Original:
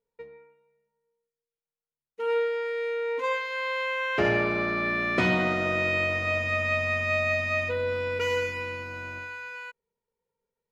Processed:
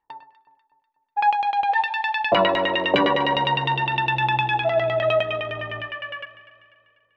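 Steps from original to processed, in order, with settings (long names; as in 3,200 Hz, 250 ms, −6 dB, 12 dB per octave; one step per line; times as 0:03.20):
gliding playback speed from 195% → 104%
auto-filter low-pass saw down 9.8 Hz 460–2,900 Hz
delay that swaps between a low-pass and a high-pass 123 ms, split 1,200 Hz, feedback 69%, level −12 dB
level +4 dB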